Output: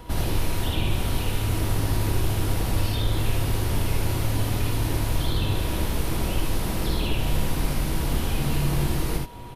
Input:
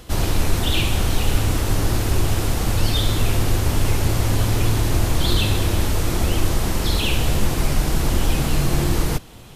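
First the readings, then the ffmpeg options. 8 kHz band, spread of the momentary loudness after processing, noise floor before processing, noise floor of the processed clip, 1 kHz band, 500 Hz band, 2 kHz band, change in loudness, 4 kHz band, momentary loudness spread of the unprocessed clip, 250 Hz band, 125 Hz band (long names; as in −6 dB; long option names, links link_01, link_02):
−7.0 dB, 2 LU, −25 dBFS, −28 dBFS, −4.5 dB, −5.0 dB, −6.0 dB, −5.0 dB, −7.0 dB, 2 LU, −4.5 dB, −4.5 dB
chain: -filter_complex "[0:a]aemphasis=mode=reproduction:type=75kf,acrossover=split=820|2300[link_01][link_02][link_03];[link_01]acompressor=threshold=-23dB:ratio=4[link_04];[link_02]acompressor=threshold=-45dB:ratio=4[link_05];[link_03]acompressor=threshold=-37dB:ratio=4[link_06];[link_04][link_05][link_06]amix=inputs=3:normalize=0,aeval=exprs='val(0)+0.00355*sin(2*PI*960*n/s)':channel_layout=same,aexciter=amount=3.6:drive=5.3:freq=9600,aecho=1:1:56|78:0.562|0.631"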